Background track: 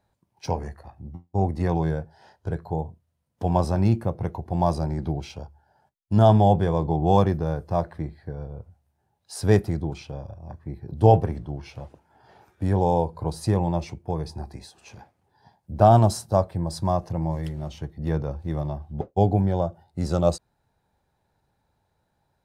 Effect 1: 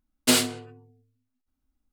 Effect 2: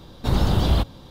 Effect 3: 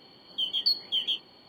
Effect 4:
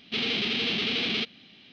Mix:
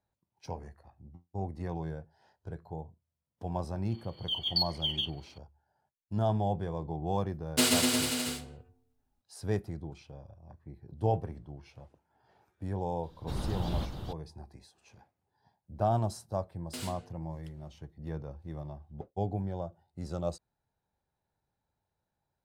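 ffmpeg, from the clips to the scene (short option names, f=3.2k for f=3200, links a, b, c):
-filter_complex "[1:a]asplit=2[a][b];[0:a]volume=-13dB[c];[3:a]tremolo=f=21:d=0.462[d];[a]aecho=1:1:130|247|352.3|447.1|532.4|609.1|678.2:0.794|0.631|0.501|0.398|0.316|0.251|0.2[e];[2:a]aecho=1:1:425:0.501[f];[b]acompressor=threshold=-21dB:ratio=6:attack=3.2:release=140:knee=1:detection=peak[g];[d]atrim=end=1.48,asetpts=PTS-STARTPTS,volume=-2dB,afade=t=in:d=0.004:c=hsin,afade=t=out:st=1.476:d=0.004:c=hsin,adelay=3900[h];[e]atrim=end=1.92,asetpts=PTS-STARTPTS,volume=-6dB,afade=t=in:d=0.004:c=hsin,afade=t=out:st=1.916:d=0.004:c=hsin,adelay=321930S[i];[f]atrim=end=1.1,asetpts=PTS-STARTPTS,volume=-15dB,afade=t=in:d=0.004:c=hsin,afade=t=out:st=1.096:d=0.004:c=hsin,adelay=13030[j];[g]atrim=end=1.92,asetpts=PTS-STARTPTS,volume=-15.5dB,afade=t=in:d=0.004:c=hsin,afade=t=out:st=1.916:d=0.004:c=hsin,adelay=16460[k];[c][h][i][j][k]amix=inputs=5:normalize=0"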